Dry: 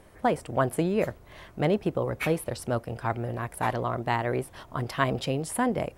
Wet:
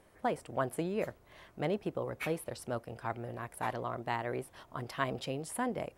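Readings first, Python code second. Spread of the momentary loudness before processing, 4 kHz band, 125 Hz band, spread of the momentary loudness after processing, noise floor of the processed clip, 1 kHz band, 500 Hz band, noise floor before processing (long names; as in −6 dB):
7 LU, −7.5 dB, −11.0 dB, 7 LU, −63 dBFS, −7.5 dB, −8.0 dB, −53 dBFS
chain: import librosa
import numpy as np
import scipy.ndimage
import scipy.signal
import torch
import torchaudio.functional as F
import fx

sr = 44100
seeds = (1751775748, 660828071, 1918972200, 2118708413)

y = fx.low_shelf(x, sr, hz=150.0, db=-6.5)
y = y * librosa.db_to_amplitude(-7.5)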